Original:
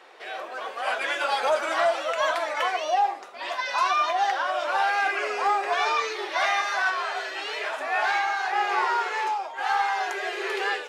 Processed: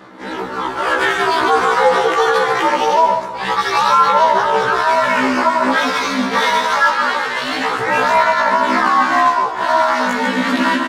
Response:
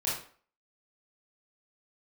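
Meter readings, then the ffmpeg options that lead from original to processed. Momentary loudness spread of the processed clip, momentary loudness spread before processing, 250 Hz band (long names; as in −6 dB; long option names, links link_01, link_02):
6 LU, 7 LU, +24.0 dB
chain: -filter_complex "[0:a]bandreject=frequency=1600:width=28,aeval=exprs='val(0)*sin(2*PI*160*n/s)':channel_layout=same,equalizer=frequency=340:width=2.4:gain=3.5,asplit=2[link_01][link_02];[link_02]adynamicsmooth=sensitivity=6.5:basefreq=2400,volume=-1dB[link_03];[link_01][link_03]amix=inputs=2:normalize=0,aphaser=in_gain=1:out_gain=1:delay=4.3:decay=0.37:speed=0.24:type=sinusoidal,equalizer=frequency=100:width_type=o:width=0.67:gain=6,equalizer=frequency=630:width_type=o:width=0.67:gain=-9,equalizer=frequency=2500:width_type=o:width=0.67:gain=-8,dynaudnorm=framelen=160:gausssize=3:maxgain=4dB,aecho=1:1:144:0.299,asplit=2[link_04][link_05];[1:a]atrim=start_sample=2205,adelay=133[link_06];[link_05][link_06]afir=irnorm=-1:irlink=0,volume=-20dB[link_07];[link_04][link_07]amix=inputs=2:normalize=0,alimiter=level_in=13dB:limit=-1dB:release=50:level=0:latency=1,afftfilt=real='re*1.73*eq(mod(b,3),0)':imag='im*1.73*eq(mod(b,3),0)':win_size=2048:overlap=0.75,volume=-2dB"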